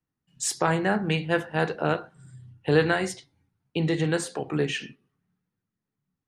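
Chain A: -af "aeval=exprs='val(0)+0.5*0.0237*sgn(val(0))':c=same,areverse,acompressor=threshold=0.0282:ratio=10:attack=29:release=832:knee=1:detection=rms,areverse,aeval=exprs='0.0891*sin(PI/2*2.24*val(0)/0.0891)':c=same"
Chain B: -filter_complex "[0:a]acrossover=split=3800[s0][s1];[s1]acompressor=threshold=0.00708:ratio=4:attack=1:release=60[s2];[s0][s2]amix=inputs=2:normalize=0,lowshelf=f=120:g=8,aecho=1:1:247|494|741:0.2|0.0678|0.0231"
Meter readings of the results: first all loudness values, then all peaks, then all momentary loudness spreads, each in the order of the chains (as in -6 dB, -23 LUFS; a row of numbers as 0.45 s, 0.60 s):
-28.0 LUFS, -25.5 LUFS; -21.0 dBFS, -7.0 dBFS; 8 LU, 18 LU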